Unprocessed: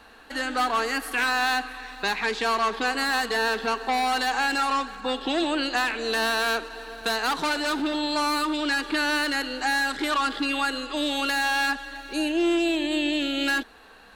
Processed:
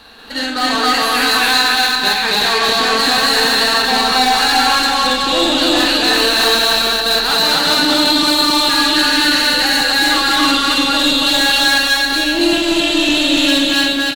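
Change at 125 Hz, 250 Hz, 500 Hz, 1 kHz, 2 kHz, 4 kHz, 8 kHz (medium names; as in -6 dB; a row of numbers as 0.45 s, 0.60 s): no reading, +10.0 dB, +9.5 dB, +9.5 dB, +10.5 dB, +18.0 dB, +16.0 dB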